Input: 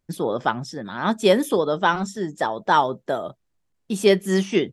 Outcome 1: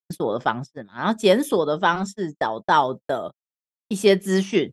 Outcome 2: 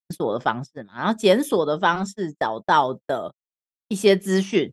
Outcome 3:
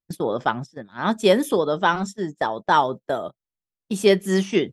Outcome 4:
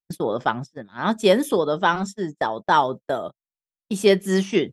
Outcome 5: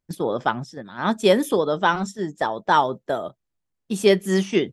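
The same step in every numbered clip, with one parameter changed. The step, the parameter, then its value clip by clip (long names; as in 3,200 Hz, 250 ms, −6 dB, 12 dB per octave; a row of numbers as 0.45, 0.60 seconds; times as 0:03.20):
noise gate, range: −60, −45, −20, −32, −7 decibels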